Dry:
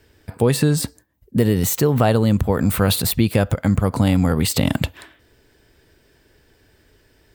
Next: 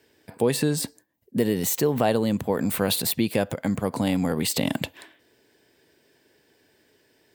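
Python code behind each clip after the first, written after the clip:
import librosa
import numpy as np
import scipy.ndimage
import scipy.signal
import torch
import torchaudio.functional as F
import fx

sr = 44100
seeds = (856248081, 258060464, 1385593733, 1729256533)

y = scipy.signal.sosfilt(scipy.signal.butter(2, 200.0, 'highpass', fs=sr, output='sos'), x)
y = fx.peak_eq(y, sr, hz=1300.0, db=-7.0, octaves=0.33)
y = y * 10.0 ** (-3.5 / 20.0)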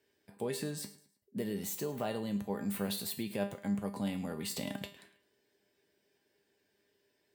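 y = fx.comb_fb(x, sr, f0_hz=200.0, decay_s=0.32, harmonics='all', damping=0.0, mix_pct=80)
y = fx.echo_feedback(y, sr, ms=107, feedback_pct=37, wet_db=-18.0)
y = y * 10.0 ** (-3.5 / 20.0)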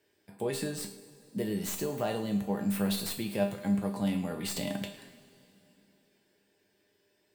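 y = fx.tracing_dist(x, sr, depth_ms=0.037)
y = fx.rev_double_slope(y, sr, seeds[0], early_s=0.31, late_s=3.2, knee_db=-18, drr_db=6.0)
y = y * 10.0 ** (3.0 / 20.0)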